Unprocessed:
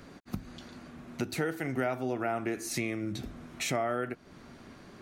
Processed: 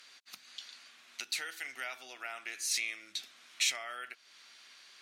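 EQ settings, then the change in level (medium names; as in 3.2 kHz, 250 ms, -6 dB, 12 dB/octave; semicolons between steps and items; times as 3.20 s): band-pass filter 3.4 kHz, Q 1.1; tilt EQ +4 dB/octave; 0.0 dB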